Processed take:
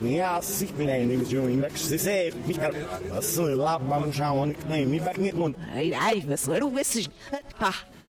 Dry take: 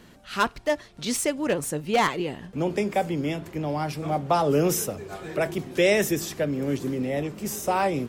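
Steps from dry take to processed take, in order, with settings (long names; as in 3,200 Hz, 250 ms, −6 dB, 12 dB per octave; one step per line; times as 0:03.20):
played backwards from end to start
brickwall limiter −21 dBFS, peak gain reduction 11.5 dB
phase-vocoder pitch shift with formants kept −1 semitone
slap from a distant wall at 20 metres, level −26 dB
every ending faded ahead of time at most 260 dB per second
level +4 dB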